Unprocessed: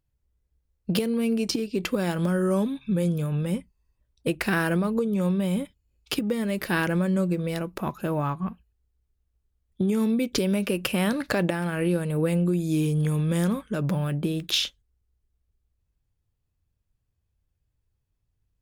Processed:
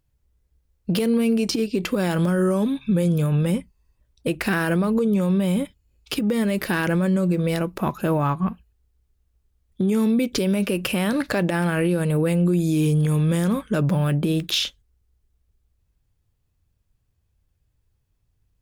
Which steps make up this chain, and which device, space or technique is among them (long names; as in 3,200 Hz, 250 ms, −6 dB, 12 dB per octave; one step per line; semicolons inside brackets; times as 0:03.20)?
clipper into limiter (hard clipping −14.5 dBFS, distortion −33 dB; brickwall limiter −20 dBFS, peak gain reduction 5.5 dB)
level +6.5 dB